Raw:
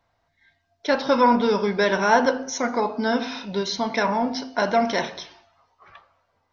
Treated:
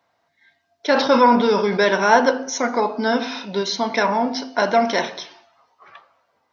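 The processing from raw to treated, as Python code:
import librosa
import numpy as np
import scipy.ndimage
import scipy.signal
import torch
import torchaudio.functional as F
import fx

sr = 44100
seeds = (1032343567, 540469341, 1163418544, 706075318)

y = scipy.signal.sosfilt(scipy.signal.butter(2, 200.0, 'highpass', fs=sr, output='sos'), x)
y = fx.sustainer(y, sr, db_per_s=66.0, at=(0.91, 1.89))
y = y * 10.0 ** (3.5 / 20.0)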